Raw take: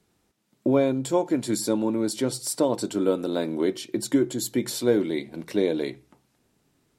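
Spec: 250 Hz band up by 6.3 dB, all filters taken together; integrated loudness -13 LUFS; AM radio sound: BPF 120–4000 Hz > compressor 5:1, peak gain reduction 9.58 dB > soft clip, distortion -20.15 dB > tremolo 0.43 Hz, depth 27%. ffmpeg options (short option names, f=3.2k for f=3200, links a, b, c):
-af "highpass=120,lowpass=4k,equalizer=f=250:t=o:g=8,acompressor=threshold=-19dB:ratio=5,asoftclip=threshold=-14.5dB,tremolo=f=0.43:d=0.27,volume=15dB"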